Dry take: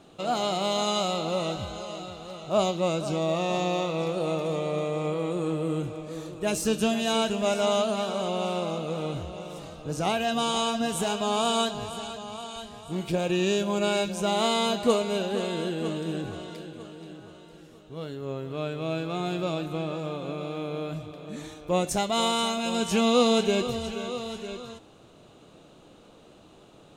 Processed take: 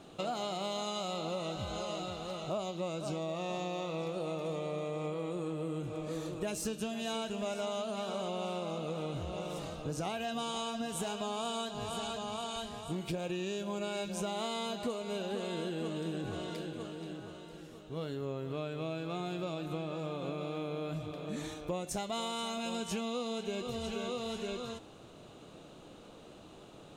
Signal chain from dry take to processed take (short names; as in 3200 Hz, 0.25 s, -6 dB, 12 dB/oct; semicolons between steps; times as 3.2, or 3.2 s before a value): compressor 10:1, threshold -33 dBFS, peak gain reduction 17.5 dB